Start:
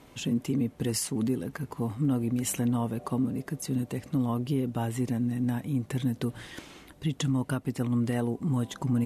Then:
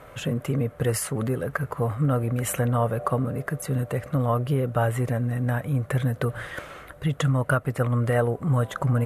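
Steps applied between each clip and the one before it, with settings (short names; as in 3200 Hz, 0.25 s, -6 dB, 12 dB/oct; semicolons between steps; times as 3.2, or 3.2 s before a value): EQ curve 140 Hz 0 dB, 230 Hz -11 dB, 340 Hz -8 dB, 560 Hz +8 dB, 900 Hz -3 dB, 1300 Hz +9 dB, 2600 Hz -4 dB, 5300 Hz -12 dB, 11000 Hz -3 dB; gain +7.5 dB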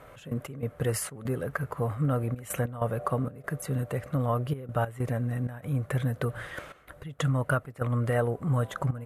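step gate "x.x.xxx.xxxxxx" 96 bpm -12 dB; gain -4 dB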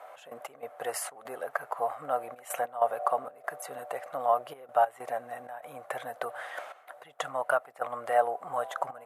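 resonant high-pass 730 Hz, resonance Q 4.9; gain -2.5 dB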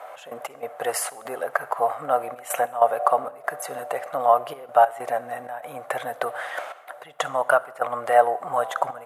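reverb RT60 0.80 s, pre-delay 45 ms, DRR 19 dB; gain +8 dB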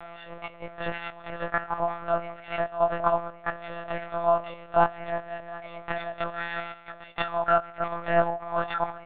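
frequency quantiser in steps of 4 st; monotone LPC vocoder at 8 kHz 170 Hz; gain -6 dB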